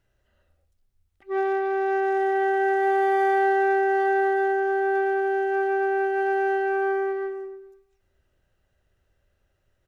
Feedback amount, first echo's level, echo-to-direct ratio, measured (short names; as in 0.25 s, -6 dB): 55%, -17.5 dB, -16.0 dB